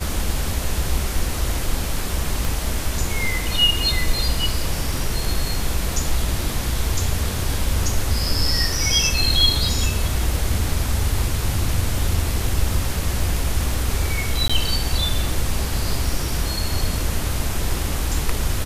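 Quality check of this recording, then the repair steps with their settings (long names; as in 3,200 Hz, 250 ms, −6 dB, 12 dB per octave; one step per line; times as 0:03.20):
0:02.45: click
0:14.48–0:14.49: drop-out 15 ms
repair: click removal
repair the gap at 0:14.48, 15 ms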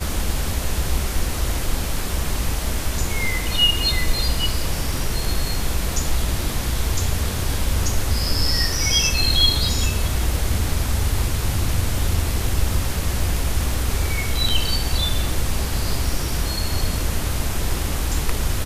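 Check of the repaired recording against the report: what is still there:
0:02.45: click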